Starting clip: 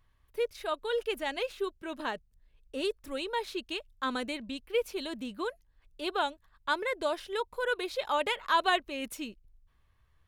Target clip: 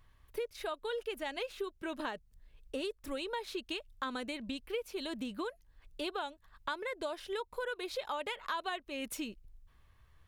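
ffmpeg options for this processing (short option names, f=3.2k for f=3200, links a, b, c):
-af "acompressor=threshold=-40dB:ratio=6,volume=4.5dB"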